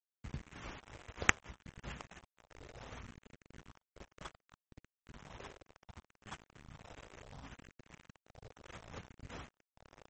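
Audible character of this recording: a quantiser's noise floor 8-bit, dither none; phasing stages 4, 0.67 Hz, lowest notch 210–1000 Hz; aliases and images of a low sample rate 4.5 kHz, jitter 20%; MP3

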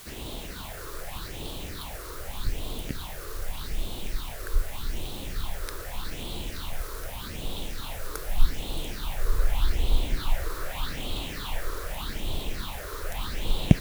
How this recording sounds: phasing stages 6, 0.83 Hz, lowest notch 200–1700 Hz; a quantiser's noise floor 8-bit, dither triangular

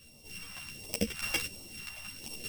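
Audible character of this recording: a buzz of ramps at a fixed pitch in blocks of 16 samples; phasing stages 2, 1.4 Hz, lowest notch 360–1500 Hz; chopped level 0.82 Hz, depth 65%, duty 20%; a shimmering, thickened sound

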